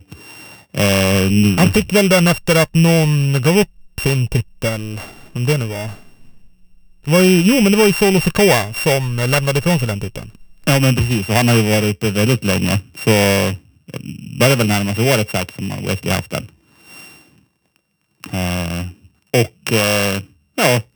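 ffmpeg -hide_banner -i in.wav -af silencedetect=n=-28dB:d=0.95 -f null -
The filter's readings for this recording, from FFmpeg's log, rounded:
silence_start: 5.95
silence_end: 7.06 | silence_duration: 1.11
silence_start: 17.07
silence_end: 18.24 | silence_duration: 1.17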